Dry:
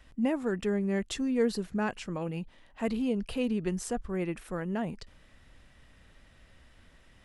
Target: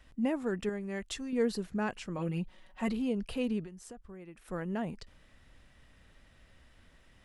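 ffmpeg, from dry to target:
-filter_complex "[0:a]asettb=1/sr,asplit=3[a][b][c];[a]atrim=end=0.694[d];[b]atrim=start=0.69:end=1.33,asetpts=PTS-STARTPTS,afade=t=in:d=0.004:c=qsin,afade=t=out:st=0.636:d=0.004:c=qsin,equalizer=f=230:w=0.47:g=-7[e];[c]atrim=start=1.326[f];[d][e]acrossfade=d=0.004:c1=hsin:c2=qsin[g];[g][f]acrossfade=d=0.004:c1=qsin:c2=hsin,asettb=1/sr,asplit=3[h][i][j];[h]atrim=end=2.184[k];[i]atrim=start=2.18:end=2.92,asetpts=PTS-STARTPTS,afade=t=in:d=0.004:c=qsin,afade=t=out:st=0.736:d=0.004:c=qsin,aecho=1:1:5.4:0.79,atrim=end_sample=32634[l];[j]atrim=start=2.916[m];[k][l]acrossfade=d=0.004:c1=hsin:c2=qsin[n];[n][m]acrossfade=d=0.004:c1=qsin:c2=hsin,asettb=1/sr,asplit=3[o][p][q];[o]atrim=end=3.634[r];[p]atrim=start=3.63:end=4.48,asetpts=PTS-STARTPTS,afade=t=in:d=0.004:c=qsin,afade=t=out:st=0.846:d=0.004:c=qsin,acompressor=threshold=-42dB:ratio=16[s];[q]atrim=start=4.476[t];[r][s]acrossfade=d=0.004:c1=hsin:c2=qsin[u];[u][t]acrossfade=d=0.004:c1=qsin:c2=hsin,volume=-2.5dB"

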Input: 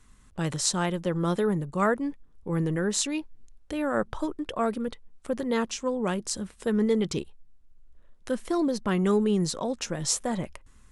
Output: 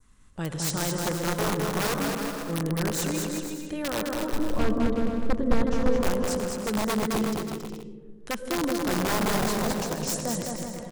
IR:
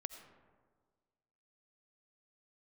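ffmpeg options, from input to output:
-filter_complex "[1:a]atrim=start_sample=2205,asetrate=36162,aresample=44100[a];[0:a][a]afir=irnorm=-1:irlink=0,aeval=exprs='(mod(11.2*val(0)+1,2)-1)/11.2':c=same,asettb=1/sr,asplit=3[b][c][d];[b]atrim=end=4.334[e];[c]atrim=start=4.33:end=6.01,asetpts=PTS-STARTPTS,afade=t=in:d=0.004:c=qsin,afade=t=out:st=1.676:d=0.004:c=qsin,aemphasis=mode=reproduction:type=riaa[f];[d]atrim=start=6.006[g];[e][f]acrossfade=d=0.004:c1=hsin:c2=qsin[h];[h][g]acrossfade=d=0.004:c1=qsin:c2=hsin,aecho=1:1:210|367.5|485.6|574.2|640.7:0.631|0.398|0.251|0.158|0.1,adynamicequalizer=threshold=0.00501:dfrequency=2800:dqfactor=1:tfrequency=2800:tqfactor=1:attack=5:release=100:ratio=0.375:range=2:mode=cutabove:tftype=bell"

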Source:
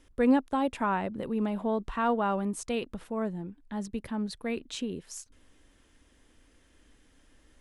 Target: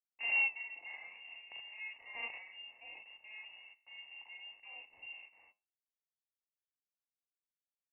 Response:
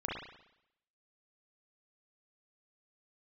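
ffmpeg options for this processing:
-filter_complex "[0:a]aecho=1:1:4.6:0.39,bandreject=f=415.4:t=h:w=4,bandreject=f=830.8:t=h:w=4,bandreject=f=1.2462k:t=h:w=4,bandreject=f=1.6616k:t=h:w=4,bandreject=f=2.077k:t=h:w=4,bandreject=f=2.4924k:t=h:w=4,bandreject=f=2.9078k:t=h:w=4,bandreject=f=3.3232k:t=h:w=4,bandreject=f=3.7386k:t=h:w=4,bandreject=f=4.154k:t=h:w=4,bandreject=f=4.5694k:t=h:w=4,bandreject=f=4.9848k:t=h:w=4,bandreject=f=5.4002k:t=h:w=4,bandreject=f=5.8156k:t=h:w=4,bandreject=f=6.231k:t=h:w=4,bandreject=f=6.6464k:t=h:w=4,bandreject=f=7.0618k:t=h:w=4,bandreject=f=7.4772k:t=h:w=4,bandreject=f=7.8926k:t=h:w=4,bandreject=f=8.308k:t=h:w=4,bandreject=f=8.7234k:t=h:w=4,bandreject=f=9.1388k:t=h:w=4,bandreject=f=9.5542k:t=h:w=4,bandreject=f=9.9696k:t=h:w=4,bandreject=f=10.385k:t=h:w=4,bandreject=f=10.8004k:t=h:w=4,bandreject=f=11.2158k:t=h:w=4,acrusher=bits=4:dc=4:mix=0:aa=0.000001[a];[1:a]atrim=start_sample=2205,atrim=end_sample=3528[b];[a][b]afir=irnorm=-1:irlink=0,aeval=exprs='(tanh(12.6*val(0)+0.45)-tanh(0.45))/12.6':c=same,flanger=delay=9.2:depth=9.8:regen=80:speed=1.5:shape=sinusoidal,asplit=3[c][d][e];[c]bandpass=f=300:t=q:w=8,volume=0dB[f];[d]bandpass=f=870:t=q:w=8,volume=-6dB[g];[e]bandpass=f=2.24k:t=q:w=8,volume=-9dB[h];[f][g][h]amix=inputs=3:normalize=0,asetrate=42336,aresample=44100,highpass=64,lowpass=f=2.6k:t=q:w=0.5098,lowpass=f=2.6k:t=q:w=0.6013,lowpass=f=2.6k:t=q:w=0.9,lowpass=f=2.6k:t=q:w=2.563,afreqshift=-3000,volume=6dB"

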